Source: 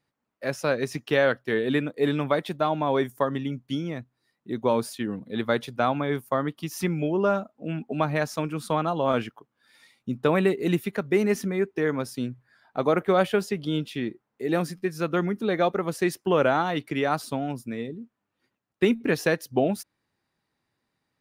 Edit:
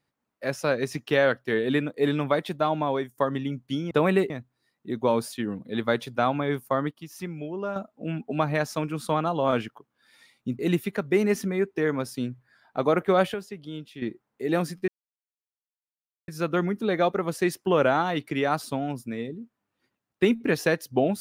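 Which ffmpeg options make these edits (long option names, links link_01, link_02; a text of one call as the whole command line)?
ffmpeg -i in.wav -filter_complex "[0:a]asplit=10[link_01][link_02][link_03][link_04][link_05][link_06][link_07][link_08][link_09][link_10];[link_01]atrim=end=3.18,asetpts=PTS-STARTPTS,afade=type=out:start_time=2.81:duration=0.37:silence=0.16788[link_11];[link_02]atrim=start=3.18:end=3.912,asetpts=PTS-STARTPTS,afade=type=in:duration=0.004:curve=hsin:silence=0.16788[link_12];[link_03]atrim=start=10.198:end=10.592[link_13];[link_04]atrim=start=3.908:end=6.522[link_14];[link_05]atrim=start=6.518:end=7.372,asetpts=PTS-STARTPTS,volume=-8.5dB[link_15];[link_06]atrim=start=7.368:end=10.202[link_16];[link_07]atrim=start=10.588:end=13.342[link_17];[link_08]atrim=start=13.338:end=14.022,asetpts=PTS-STARTPTS,volume=-10dB[link_18];[link_09]atrim=start=14.018:end=14.88,asetpts=PTS-STARTPTS,afade=type=out:start_time=0.858:duration=0.004:curve=hsin,apad=pad_dur=1.4[link_19];[link_10]atrim=start=14.88,asetpts=PTS-STARTPTS,afade=type=in:duration=0.004:curve=hsin[link_20];[link_11][link_12]concat=n=2:v=0:a=1[link_21];[link_21][link_13]acrossfade=duration=0.004:curve1=hsin:curve2=hsin[link_22];[link_22][link_14]acrossfade=duration=0.004:curve1=hsin:curve2=hsin[link_23];[link_23][link_15]acrossfade=duration=0.004:curve1=hsin:curve2=hsin[link_24];[link_24][link_16]acrossfade=duration=0.004:curve1=hsin:curve2=hsin[link_25];[link_25][link_17]acrossfade=duration=0.004:curve1=hsin:curve2=hsin[link_26];[link_26][link_18]acrossfade=duration=0.004:curve1=hsin:curve2=hsin[link_27];[link_19][link_20]concat=n=2:v=0:a=1[link_28];[link_27][link_28]acrossfade=duration=0.004:curve1=hsin:curve2=hsin" out.wav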